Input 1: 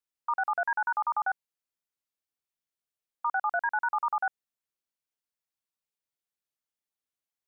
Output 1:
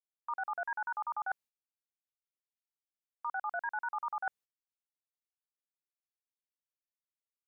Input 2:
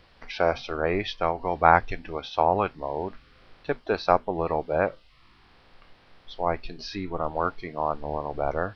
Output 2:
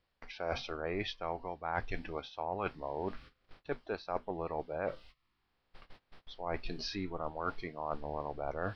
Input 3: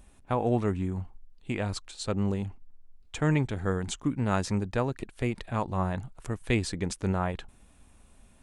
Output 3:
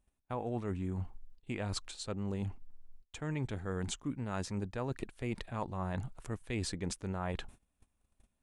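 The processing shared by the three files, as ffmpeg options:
-af "agate=range=-23dB:threshold=-50dB:ratio=16:detection=peak,areverse,acompressor=threshold=-33dB:ratio=8,areverse"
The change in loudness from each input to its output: -8.0, -12.5, -8.5 LU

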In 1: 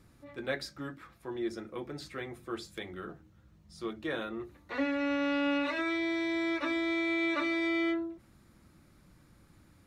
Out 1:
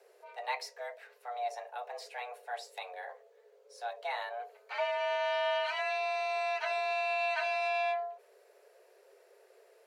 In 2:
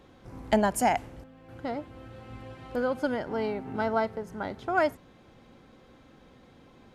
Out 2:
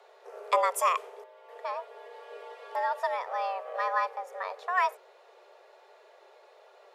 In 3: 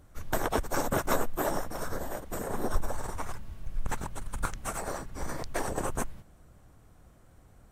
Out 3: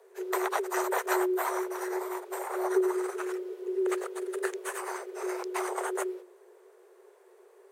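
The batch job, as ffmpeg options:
-af "afreqshift=360,volume=-1.5dB"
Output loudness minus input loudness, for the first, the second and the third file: -1.0, -1.0, +3.0 LU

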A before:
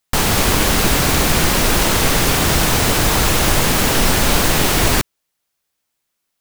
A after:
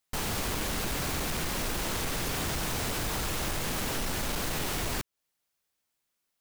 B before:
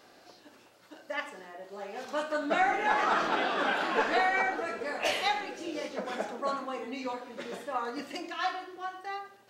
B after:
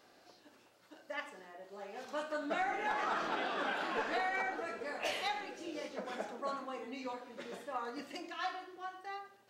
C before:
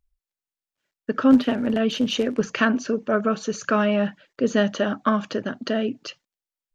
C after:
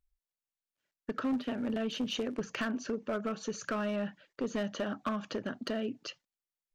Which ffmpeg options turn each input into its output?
-af "acompressor=threshold=-25dB:ratio=2.5,asoftclip=type=hard:threshold=-20.5dB,volume=-6.5dB"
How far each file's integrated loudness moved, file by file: -16.5, -7.5, -13.0 LU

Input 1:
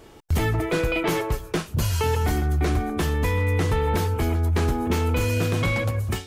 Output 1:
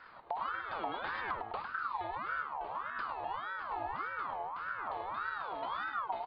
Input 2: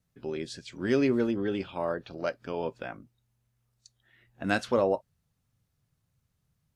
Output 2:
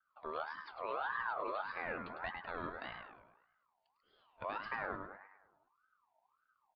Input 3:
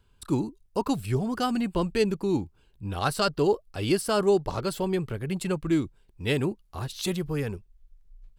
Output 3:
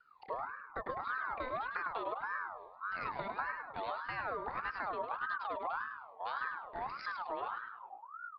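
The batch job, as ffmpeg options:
-filter_complex "[0:a]acrossover=split=210[a][b];[a]acontrast=71[c];[b]alimiter=limit=-19.5dB:level=0:latency=1:release=120[d];[c][d]amix=inputs=2:normalize=0,acompressor=threshold=-27dB:ratio=6,asplit=2[e][f];[f]adelay=103,lowpass=f=2.7k:p=1,volume=-5dB,asplit=2[g][h];[h]adelay=103,lowpass=f=2.7k:p=1,volume=0.52,asplit=2[i][j];[j]adelay=103,lowpass=f=2.7k:p=1,volume=0.52,asplit=2[k][l];[l]adelay=103,lowpass=f=2.7k:p=1,volume=0.52,asplit=2[m][n];[n]adelay=103,lowpass=f=2.7k:p=1,volume=0.52,asplit=2[o][p];[p]adelay=103,lowpass=f=2.7k:p=1,volume=0.52,asplit=2[q][r];[r]adelay=103,lowpass=f=2.7k:p=1,volume=0.52[s];[e][g][i][k][m][o][q][s]amix=inputs=8:normalize=0,aresample=8000,aresample=44100,aeval=exprs='val(0)*sin(2*PI*1100*n/s+1100*0.3/1.7*sin(2*PI*1.7*n/s))':c=same,volume=-7dB"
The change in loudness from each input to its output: -14.5, -11.5, -12.0 LU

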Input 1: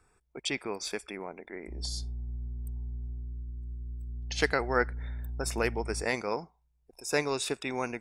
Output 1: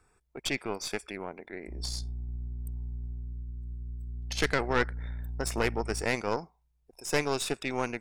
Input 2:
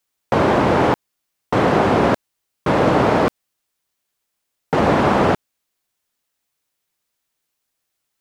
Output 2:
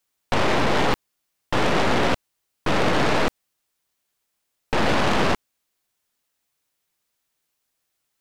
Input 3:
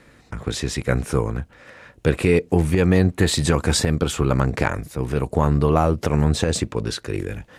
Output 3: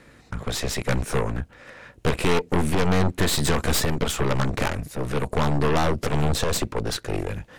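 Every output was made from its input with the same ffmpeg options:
-af "aeval=exprs='0.794*(cos(1*acos(clip(val(0)/0.794,-1,1)))-cos(1*PI/2))+0.178*(cos(8*acos(clip(val(0)/0.794,-1,1)))-cos(8*PI/2))':c=same,asoftclip=type=tanh:threshold=-13.5dB"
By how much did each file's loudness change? +0.5, -5.0, -3.5 LU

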